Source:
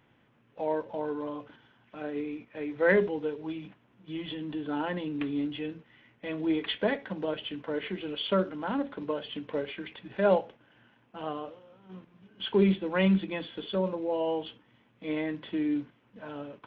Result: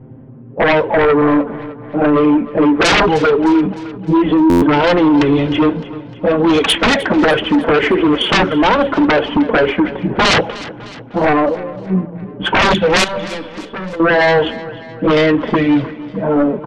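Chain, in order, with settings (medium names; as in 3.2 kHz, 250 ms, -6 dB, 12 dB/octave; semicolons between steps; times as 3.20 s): level-controlled noise filter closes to 390 Hz, open at -22.5 dBFS; 5.69–6.75 s: graphic EQ with 31 bands 315 Hz -12 dB, 800 Hz +4 dB, 2 kHz -11 dB; in parallel at +2 dB: compression 8:1, threshold -37 dBFS, peak gain reduction 18.5 dB; on the sum: touch-sensitive flanger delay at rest 7.9 ms, full sweep at -17 dBFS; sine folder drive 20 dB, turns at -10 dBFS; 13.04–14.00 s: feedback comb 590 Hz, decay 0.52 s, mix 80%; on a send: feedback delay 305 ms, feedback 53%, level -17 dB; on the sum: buffer glitch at 4.49 s, samples 512, times 10; trim +2 dB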